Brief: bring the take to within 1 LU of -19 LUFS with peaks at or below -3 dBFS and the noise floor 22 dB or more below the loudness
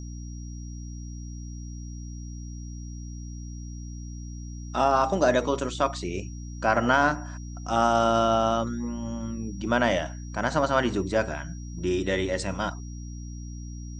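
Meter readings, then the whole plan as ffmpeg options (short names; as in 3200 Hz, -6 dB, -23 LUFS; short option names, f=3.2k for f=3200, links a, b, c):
hum 60 Hz; harmonics up to 300 Hz; hum level -35 dBFS; steady tone 5700 Hz; tone level -50 dBFS; loudness -26.0 LUFS; peak -6.0 dBFS; loudness target -19.0 LUFS
-> -af "bandreject=f=60:t=h:w=6,bandreject=f=120:t=h:w=6,bandreject=f=180:t=h:w=6,bandreject=f=240:t=h:w=6,bandreject=f=300:t=h:w=6"
-af "bandreject=f=5.7k:w=30"
-af "volume=7dB,alimiter=limit=-3dB:level=0:latency=1"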